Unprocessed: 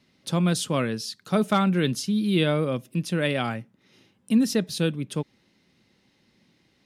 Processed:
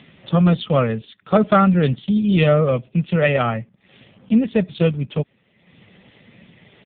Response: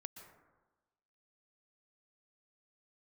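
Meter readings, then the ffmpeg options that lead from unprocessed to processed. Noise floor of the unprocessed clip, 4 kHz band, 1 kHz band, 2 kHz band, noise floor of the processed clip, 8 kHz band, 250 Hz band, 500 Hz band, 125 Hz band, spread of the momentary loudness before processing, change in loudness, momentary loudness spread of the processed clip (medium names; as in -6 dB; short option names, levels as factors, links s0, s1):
-66 dBFS, -1.5 dB, +8.0 dB, +5.0 dB, -62 dBFS, under -40 dB, +5.5 dB, +8.5 dB, +8.0 dB, 10 LU, +6.5 dB, 10 LU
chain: -af "aecho=1:1:1.6:0.71,acompressor=mode=upward:threshold=0.0141:ratio=2.5,volume=2.24" -ar 8000 -c:a libopencore_amrnb -b:a 5150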